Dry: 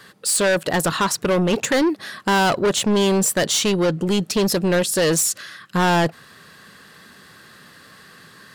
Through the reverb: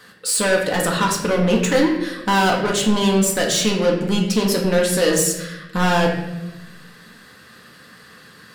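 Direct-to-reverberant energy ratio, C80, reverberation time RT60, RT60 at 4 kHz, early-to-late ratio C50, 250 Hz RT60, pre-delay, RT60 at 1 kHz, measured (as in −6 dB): −1.0 dB, 8.0 dB, 0.95 s, 0.75 s, 5.0 dB, 1.4 s, 4 ms, 0.80 s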